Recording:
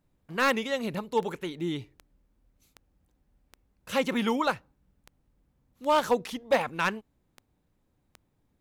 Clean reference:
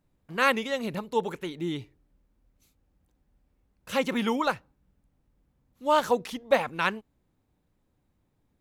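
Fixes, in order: clip repair -16 dBFS; de-click

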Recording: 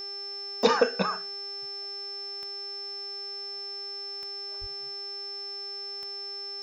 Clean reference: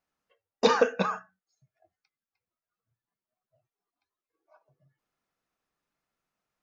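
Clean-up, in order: de-click; de-hum 400.4 Hz, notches 22; notch 5300 Hz, Q 30; 4.6–4.72 HPF 140 Hz 24 dB/oct

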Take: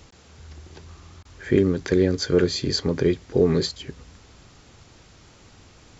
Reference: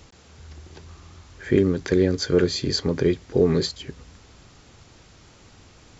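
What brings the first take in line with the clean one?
interpolate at 1.23, 20 ms

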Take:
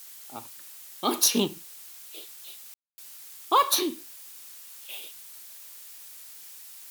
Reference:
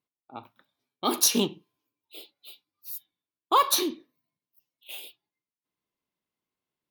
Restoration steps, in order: room tone fill 2.74–2.98; noise print and reduce 30 dB

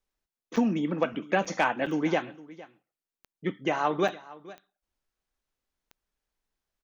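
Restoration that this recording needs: clip repair -12 dBFS; de-click; interpolate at 0.56/1.45/1.86/2.83/3.33/4.08, 5.5 ms; inverse comb 0.459 s -19.5 dB

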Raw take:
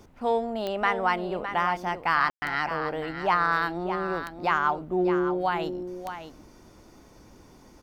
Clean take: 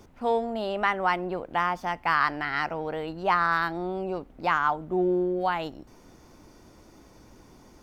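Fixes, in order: de-click; room tone fill 2.3–2.42; inverse comb 0.61 s -9.5 dB

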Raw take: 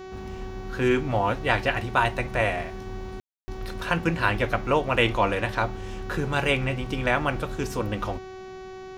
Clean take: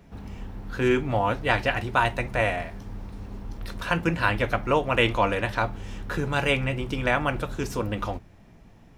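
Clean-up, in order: de-hum 376 Hz, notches 19; room tone fill 3.2–3.48

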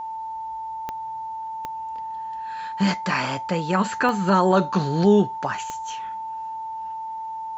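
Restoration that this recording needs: de-click; notch 890 Hz, Q 30

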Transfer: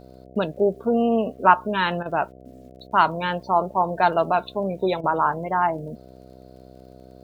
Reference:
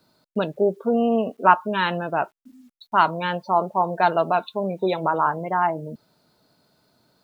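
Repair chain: de-click; de-hum 64.2 Hz, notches 11; interpolate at 2.03/5.01, 25 ms

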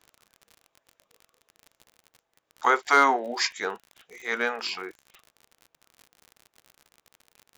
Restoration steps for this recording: clip repair -8.5 dBFS; de-click

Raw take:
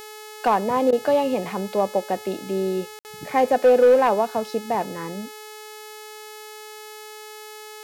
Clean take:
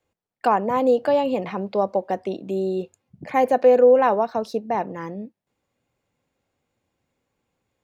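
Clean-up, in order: clip repair -10 dBFS; de-hum 427.9 Hz, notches 38; interpolate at 2.99, 59 ms; interpolate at 0.91, 14 ms

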